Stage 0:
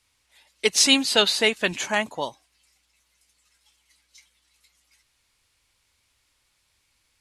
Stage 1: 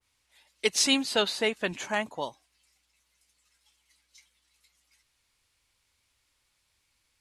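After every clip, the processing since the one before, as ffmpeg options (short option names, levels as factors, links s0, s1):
-af "adynamicequalizer=threshold=0.02:dfrequency=1900:dqfactor=0.7:tfrequency=1900:tqfactor=0.7:attack=5:release=100:ratio=0.375:range=3.5:mode=cutabove:tftype=highshelf,volume=0.596"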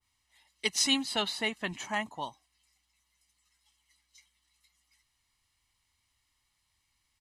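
-af "aecho=1:1:1:0.57,volume=0.596"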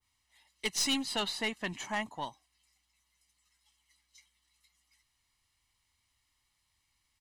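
-af "aeval=exprs='(tanh(15.8*val(0)+0.3)-tanh(0.3))/15.8':c=same"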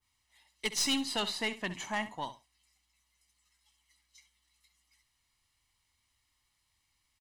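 -af "aecho=1:1:66|132:0.211|0.038"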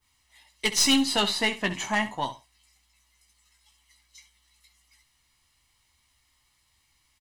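-filter_complex "[0:a]asplit=2[s0][s1];[s1]adelay=15,volume=0.398[s2];[s0][s2]amix=inputs=2:normalize=0,volume=2.51"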